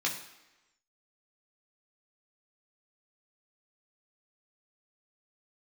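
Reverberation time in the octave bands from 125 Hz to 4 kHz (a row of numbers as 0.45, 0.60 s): 0.80, 0.95, 1.0, 1.1, 1.0, 0.95 s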